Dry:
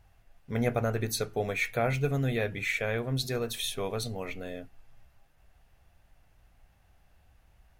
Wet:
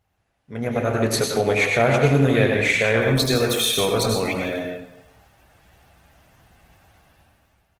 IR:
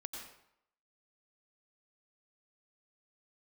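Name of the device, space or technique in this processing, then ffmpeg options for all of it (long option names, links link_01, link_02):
far-field microphone of a smart speaker: -filter_complex "[0:a]asplit=3[link_01][link_02][link_03];[link_01]afade=type=out:start_time=1.31:duration=0.02[link_04];[link_02]bandreject=frequency=126:width_type=h:width=4,bandreject=frequency=252:width_type=h:width=4,afade=type=in:start_time=1.31:duration=0.02,afade=type=out:start_time=2.01:duration=0.02[link_05];[link_03]afade=type=in:start_time=2.01:duration=0.02[link_06];[link_04][link_05][link_06]amix=inputs=3:normalize=0,aecho=1:1:240:0.0944[link_07];[1:a]atrim=start_sample=2205[link_08];[link_07][link_08]afir=irnorm=-1:irlink=0,highpass=92,dynaudnorm=framelen=130:gausssize=13:maxgain=16dB" -ar 48000 -c:a libopus -b:a 16k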